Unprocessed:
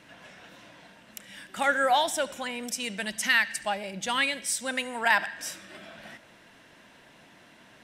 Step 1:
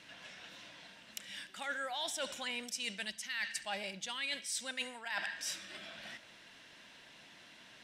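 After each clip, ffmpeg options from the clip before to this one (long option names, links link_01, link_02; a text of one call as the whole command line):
ffmpeg -i in.wav -af "equalizer=frequency=4100:width=0.54:gain=11,areverse,acompressor=threshold=-27dB:ratio=20,areverse,volume=-8dB" out.wav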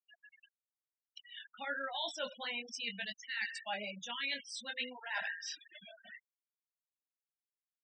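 ffmpeg -i in.wav -filter_complex "[0:a]flanger=delay=18:depth=4.3:speed=0.56,acrossover=split=6800[link_01][link_02];[link_02]acompressor=threshold=-58dB:ratio=4:attack=1:release=60[link_03];[link_01][link_03]amix=inputs=2:normalize=0,afftfilt=real='re*gte(hypot(re,im),0.00891)':imag='im*gte(hypot(re,im),0.00891)':win_size=1024:overlap=0.75,volume=3.5dB" out.wav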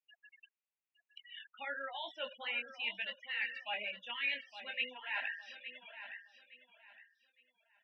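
ffmpeg -i in.wav -af "highpass=frequency=300:width=0.5412,highpass=frequency=300:width=1.3066,equalizer=frequency=300:width_type=q:width=4:gain=-5,equalizer=frequency=430:width_type=q:width=4:gain=-6,equalizer=frequency=680:width_type=q:width=4:gain=-6,equalizer=frequency=1100:width_type=q:width=4:gain=-3,equalizer=frequency=1500:width_type=q:width=4:gain=-5,equalizer=frequency=2600:width_type=q:width=4:gain=7,lowpass=frequency=2800:width=0.5412,lowpass=frequency=2800:width=1.3066,aecho=1:1:863|1726|2589:0.266|0.0718|0.0194,volume=1dB" out.wav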